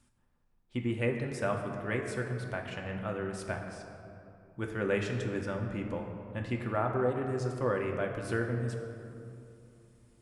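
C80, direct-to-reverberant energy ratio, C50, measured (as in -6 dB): 6.0 dB, 1.5 dB, 5.0 dB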